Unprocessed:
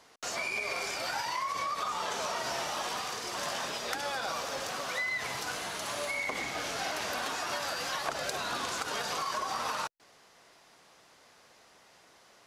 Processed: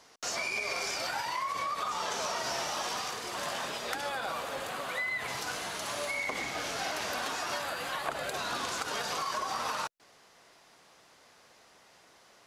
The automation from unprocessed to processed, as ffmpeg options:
-af "asetnsamples=n=441:p=0,asendcmd='1.07 equalizer g -3.5;1.91 equalizer g 3;3.11 equalizer g -4;4.09 equalizer g -11.5;5.28 equalizer g 0;7.62 equalizer g -11.5;8.34 equalizer g 0',equalizer=f=5.6k:t=o:w=0.56:g=4.5"

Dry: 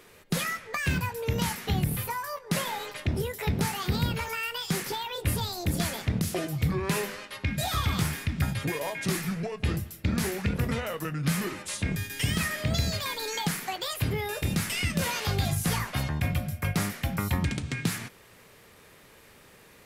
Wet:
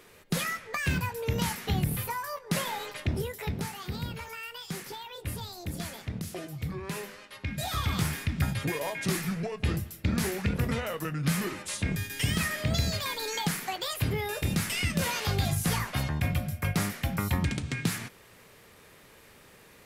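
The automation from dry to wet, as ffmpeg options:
-af "volume=6.5dB,afade=t=out:st=3.07:d=0.64:silence=0.446684,afade=t=in:st=7.18:d=0.96:silence=0.421697"

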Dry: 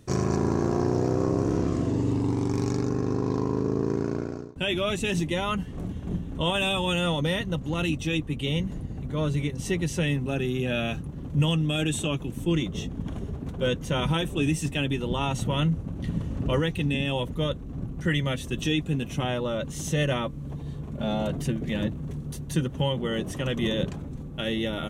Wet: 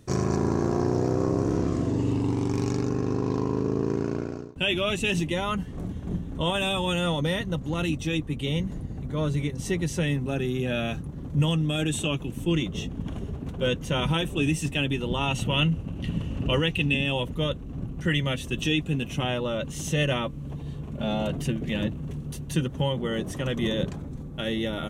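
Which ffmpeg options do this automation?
-af "asetnsamples=n=441:p=0,asendcmd='1.99 equalizer g 6;5.32 equalizer g -3;11.93 equalizer g 4;15.28 equalizer g 12.5;16.94 equalizer g 5.5;22.68 equalizer g -2.5',equalizer=f=2.8k:t=o:w=0.36:g=-1"

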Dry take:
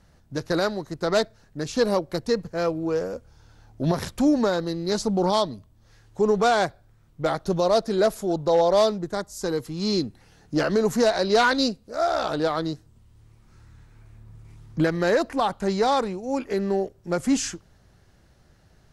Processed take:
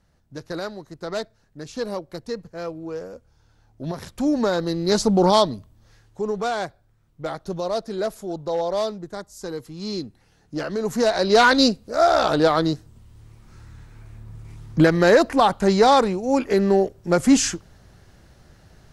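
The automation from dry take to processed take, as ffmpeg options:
-af "volume=17dB,afade=t=in:st=4.05:d=0.9:silence=0.251189,afade=t=out:st=5.52:d=0.7:silence=0.298538,afade=t=in:st=10.76:d=0.92:silence=0.266073"

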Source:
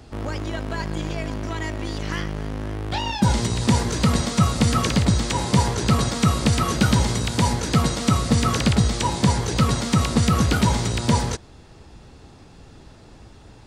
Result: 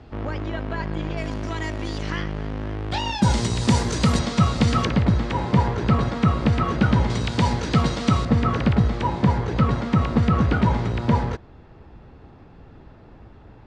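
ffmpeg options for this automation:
-af "asetnsamples=n=441:p=0,asendcmd='1.17 lowpass f 6900;2.1 lowpass f 4000;2.91 lowpass f 8200;4.19 lowpass f 4600;4.85 lowpass f 2200;7.1 lowpass f 4100;8.25 lowpass f 2000',lowpass=2.9k"

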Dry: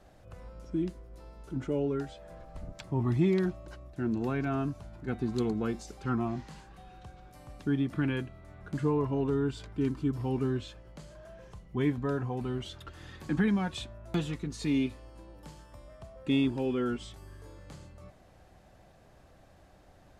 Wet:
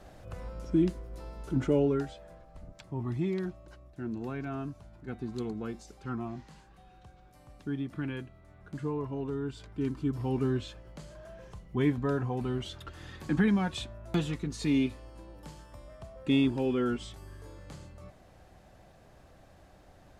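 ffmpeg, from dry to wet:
-af "volume=13dB,afade=t=out:st=1.65:d=0.76:silence=0.266073,afade=t=in:st=9.41:d=1.14:silence=0.446684"

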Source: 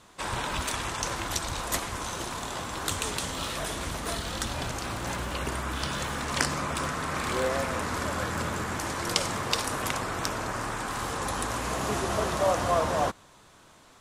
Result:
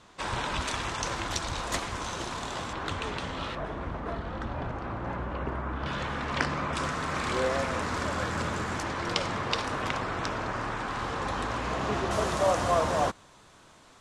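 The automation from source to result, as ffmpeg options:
-af "asetnsamples=n=441:p=0,asendcmd='2.73 lowpass f 2900;3.55 lowpass f 1400;5.86 lowpass f 3200;6.73 lowpass f 6600;8.83 lowpass f 4000;12.11 lowpass f 9300',lowpass=6.4k"

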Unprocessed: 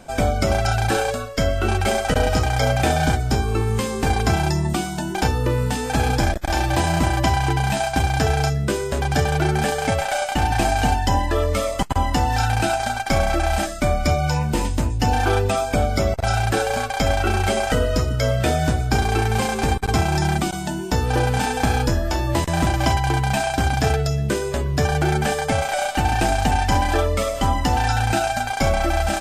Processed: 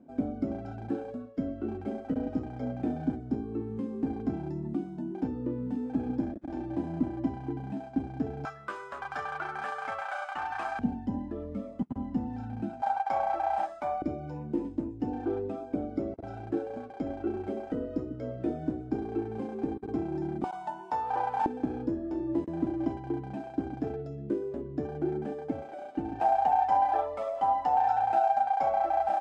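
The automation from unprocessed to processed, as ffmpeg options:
-af "asetnsamples=n=441:p=0,asendcmd='8.45 bandpass f 1200;10.79 bandpass f 230;12.82 bandpass f 860;14.02 bandpass f 310;20.44 bandpass f 880;21.46 bandpass f 310;26.2 bandpass f 780',bandpass=f=270:t=q:w=4.8:csg=0"

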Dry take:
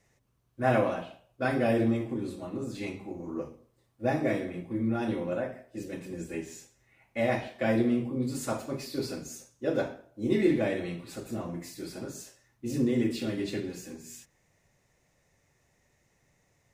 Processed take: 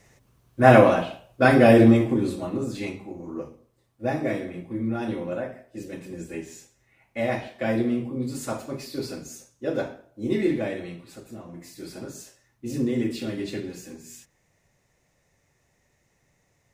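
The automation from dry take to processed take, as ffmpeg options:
-af "volume=19.5dB,afade=t=out:st=1.91:d=1.16:silence=0.316228,afade=t=out:st=10.34:d=1.11:silence=0.398107,afade=t=in:st=11.45:d=0.47:silence=0.398107"

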